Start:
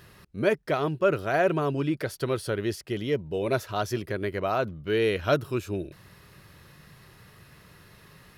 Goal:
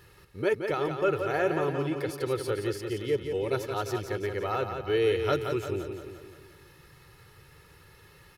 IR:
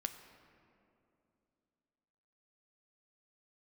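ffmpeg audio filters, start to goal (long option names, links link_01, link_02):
-filter_complex "[0:a]aecho=1:1:2.3:0.62,asplit=2[link_01][link_02];[link_02]aecho=0:1:173|346|519|692|865|1038|1211:0.473|0.251|0.133|0.0704|0.0373|0.0198|0.0105[link_03];[link_01][link_03]amix=inputs=2:normalize=0,volume=-4.5dB"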